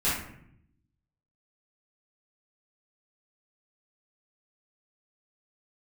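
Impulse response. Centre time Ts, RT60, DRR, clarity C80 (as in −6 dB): 53 ms, 0.70 s, −12.0 dB, 6.0 dB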